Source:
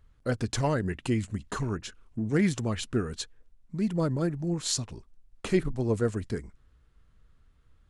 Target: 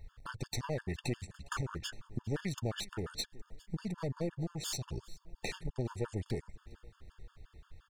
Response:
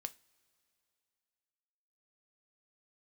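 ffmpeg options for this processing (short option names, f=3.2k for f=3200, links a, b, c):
-filter_complex "[0:a]equalizer=f=250:t=o:w=0.67:g=-9,equalizer=f=4k:t=o:w=0.67:g=3,equalizer=f=10k:t=o:w=0.67:g=-5,acompressor=threshold=-41dB:ratio=5,aeval=exprs='clip(val(0),-1,0.00531)':c=same,asplit=2[a][b];[b]aecho=0:1:408|816|1224|1632:0.0794|0.0437|0.024|0.0132[c];[a][c]amix=inputs=2:normalize=0,afftfilt=real='re*gt(sin(2*PI*5.7*pts/sr)*(1-2*mod(floor(b*sr/1024/900),2)),0)':imag='im*gt(sin(2*PI*5.7*pts/sr)*(1-2*mod(floor(b*sr/1024/900),2)),0)':win_size=1024:overlap=0.75,volume=10dB"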